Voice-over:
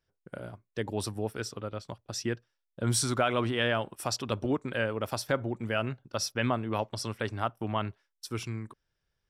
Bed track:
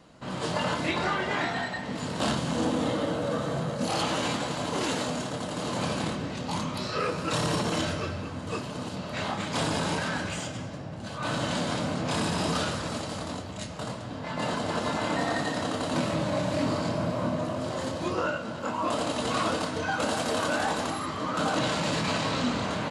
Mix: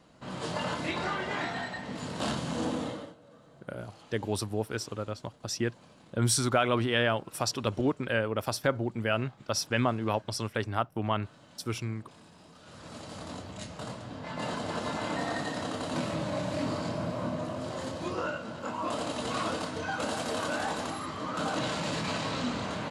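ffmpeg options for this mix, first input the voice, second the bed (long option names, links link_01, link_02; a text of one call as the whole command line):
ffmpeg -i stem1.wav -i stem2.wav -filter_complex "[0:a]adelay=3350,volume=1.5dB[link_01];[1:a]volume=18dB,afade=type=out:start_time=2.73:duration=0.42:silence=0.0749894,afade=type=in:start_time=12.62:duration=0.82:silence=0.0749894[link_02];[link_01][link_02]amix=inputs=2:normalize=0" out.wav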